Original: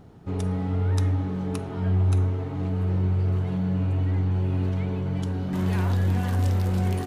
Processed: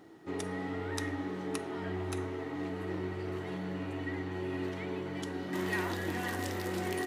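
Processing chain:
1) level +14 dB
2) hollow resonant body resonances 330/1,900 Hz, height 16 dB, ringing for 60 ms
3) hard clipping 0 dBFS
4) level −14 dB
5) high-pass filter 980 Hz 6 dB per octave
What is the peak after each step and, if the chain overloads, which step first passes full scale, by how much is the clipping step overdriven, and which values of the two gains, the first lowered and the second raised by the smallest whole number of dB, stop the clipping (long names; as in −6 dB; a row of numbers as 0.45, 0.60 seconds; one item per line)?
+1.0, +3.0, 0.0, −14.0, −16.5 dBFS
step 1, 3.0 dB
step 1 +11 dB, step 4 −11 dB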